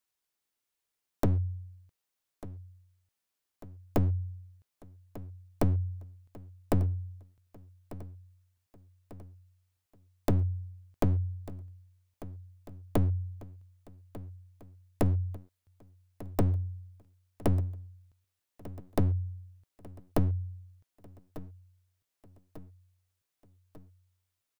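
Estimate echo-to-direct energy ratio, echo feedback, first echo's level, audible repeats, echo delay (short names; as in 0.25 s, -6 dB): -15.5 dB, 56%, -17.0 dB, 4, 1.195 s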